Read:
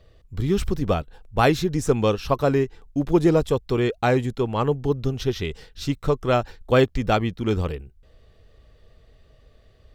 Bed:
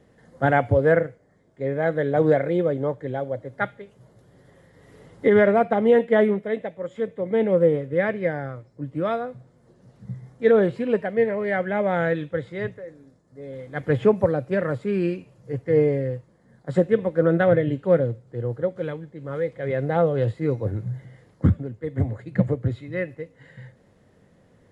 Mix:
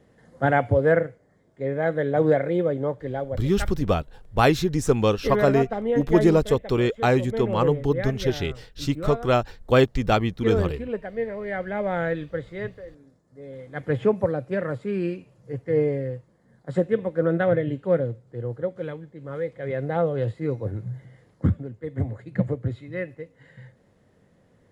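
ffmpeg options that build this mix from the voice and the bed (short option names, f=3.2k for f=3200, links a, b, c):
-filter_complex "[0:a]adelay=3000,volume=0dB[a];[1:a]volume=3.5dB,afade=t=out:st=3.23:d=0.31:silence=0.473151,afade=t=in:st=11.27:d=0.7:silence=0.595662[b];[a][b]amix=inputs=2:normalize=0"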